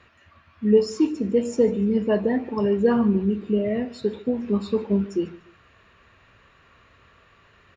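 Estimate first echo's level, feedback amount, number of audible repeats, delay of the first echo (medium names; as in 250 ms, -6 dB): -20.0 dB, 31%, 2, 147 ms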